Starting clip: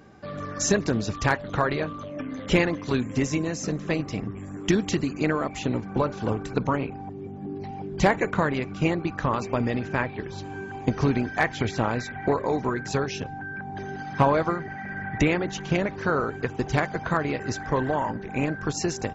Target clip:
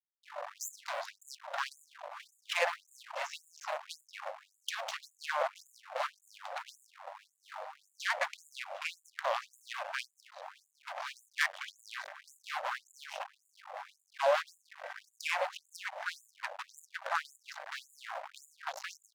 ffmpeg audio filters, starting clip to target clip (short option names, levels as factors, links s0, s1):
-af "adynamicsmooth=sensitivity=2:basefreq=2100,equalizer=f=125:t=o:w=1:g=8,equalizer=f=250:t=o:w=1:g=10,equalizer=f=500:t=o:w=1:g=3,equalizer=f=1000:t=o:w=1:g=-11,equalizer=f=2000:t=o:w=1:g=-3,aeval=exprs='val(0)+0.0178*(sin(2*PI*50*n/s)+sin(2*PI*2*50*n/s)/2+sin(2*PI*3*50*n/s)/3+sin(2*PI*4*50*n/s)/4+sin(2*PI*5*50*n/s)/5)':c=same,aeval=exprs='sgn(val(0))*max(abs(val(0))-0.0376,0)':c=same,bandreject=f=71.7:t=h:w=4,bandreject=f=143.4:t=h:w=4,alimiter=level_in=2.99:limit=0.891:release=50:level=0:latency=1,afftfilt=real='re*gte(b*sr/1024,510*pow(6900/510,0.5+0.5*sin(2*PI*1.8*pts/sr)))':imag='im*gte(b*sr/1024,510*pow(6900/510,0.5+0.5*sin(2*PI*1.8*pts/sr)))':win_size=1024:overlap=0.75,volume=0.501"